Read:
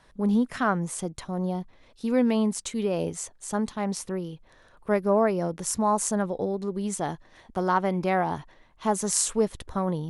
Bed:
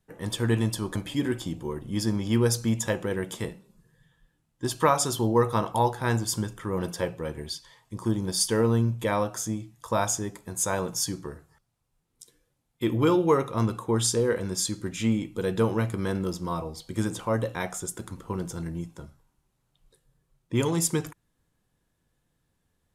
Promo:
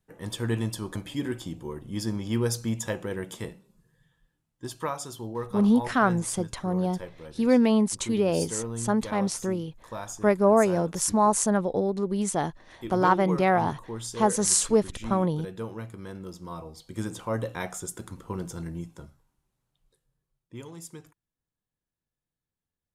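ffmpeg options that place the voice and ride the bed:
ffmpeg -i stem1.wav -i stem2.wav -filter_complex "[0:a]adelay=5350,volume=2.5dB[link_01];[1:a]volume=6dB,afade=type=out:start_time=4.03:duration=0.99:silence=0.398107,afade=type=in:start_time=16.16:duration=1.43:silence=0.334965,afade=type=out:start_time=18.97:duration=1.66:silence=0.16788[link_02];[link_01][link_02]amix=inputs=2:normalize=0" out.wav

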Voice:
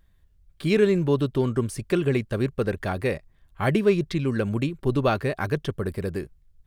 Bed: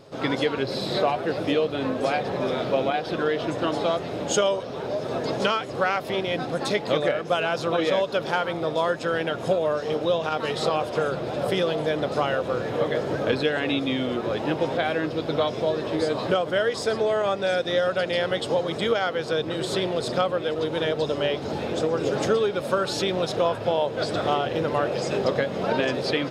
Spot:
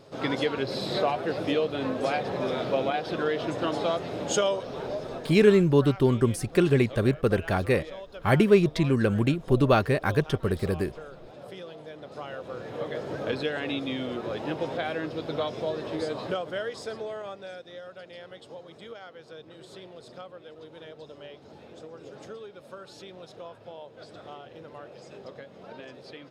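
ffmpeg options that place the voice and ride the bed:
ffmpeg -i stem1.wav -i stem2.wav -filter_complex "[0:a]adelay=4650,volume=1.5dB[link_01];[1:a]volume=9dB,afade=type=out:start_time=4.83:duration=0.57:silence=0.177828,afade=type=in:start_time=12:duration=1.36:silence=0.251189,afade=type=out:start_time=15.94:duration=1.73:silence=0.199526[link_02];[link_01][link_02]amix=inputs=2:normalize=0" out.wav

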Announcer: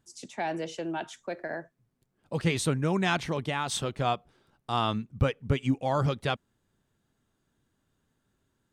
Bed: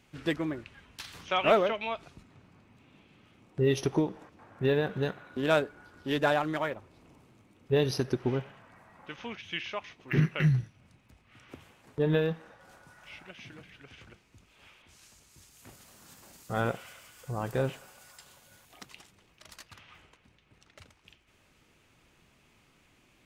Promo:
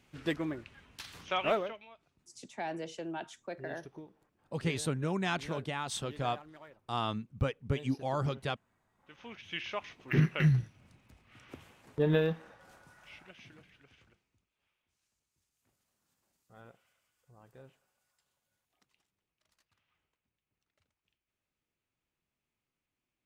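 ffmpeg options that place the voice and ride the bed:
ffmpeg -i stem1.wav -i stem2.wav -filter_complex "[0:a]adelay=2200,volume=-6dB[link_01];[1:a]volume=17.5dB,afade=type=out:start_time=1.29:duration=0.57:silence=0.11885,afade=type=in:start_time=8.98:duration=0.77:silence=0.0944061,afade=type=out:start_time=12.33:duration=2.17:silence=0.0595662[link_02];[link_01][link_02]amix=inputs=2:normalize=0" out.wav

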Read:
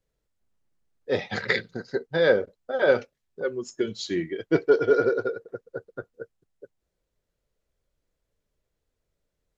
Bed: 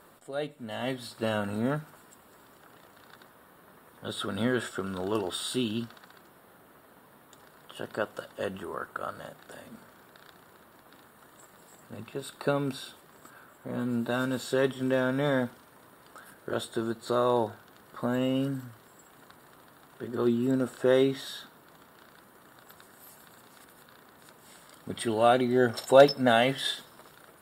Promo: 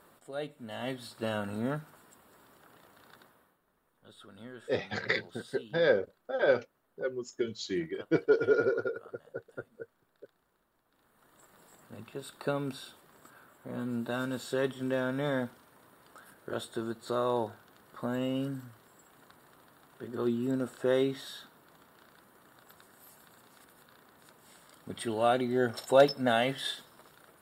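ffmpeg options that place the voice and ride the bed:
ffmpeg -i stem1.wav -i stem2.wav -filter_complex "[0:a]adelay=3600,volume=-5.5dB[link_01];[1:a]volume=11dB,afade=type=out:start_time=3.18:duration=0.41:silence=0.16788,afade=type=in:start_time=10.91:duration=0.69:silence=0.177828[link_02];[link_01][link_02]amix=inputs=2:normalize=0" out.wav

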